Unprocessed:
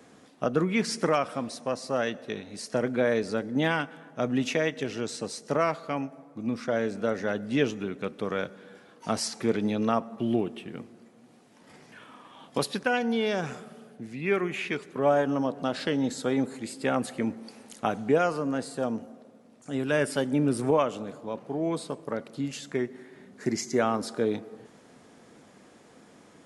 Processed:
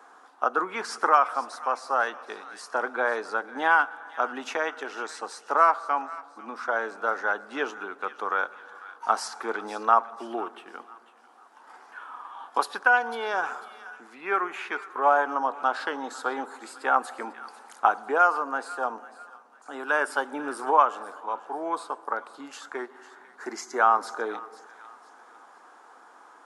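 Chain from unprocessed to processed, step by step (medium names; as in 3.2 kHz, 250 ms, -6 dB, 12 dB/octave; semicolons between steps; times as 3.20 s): high-pass 330 Hz 24 dB/octave; high-order bell 1.1 kHz +15.5 dB 1.3 oct; on a send: feedback echo behind a high-pass 497 ms, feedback 37%, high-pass 1.4 kHz, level -15 dB; on the sum: trim -4.5 dB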